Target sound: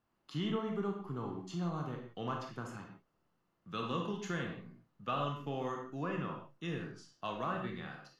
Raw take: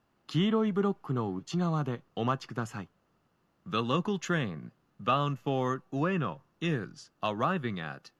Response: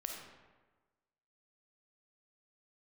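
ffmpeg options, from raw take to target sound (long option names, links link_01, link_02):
-filter_complex "[1:a]atrim=start_sample=2205,afade=type=out:start_time=0.34:duration=0.01,atrim=end_sample=15435,asetrate=70560,aresample=44100[link_01];[0:a][link_01]afir=irnorm=-1:irlink=0,volume=-2.5dB"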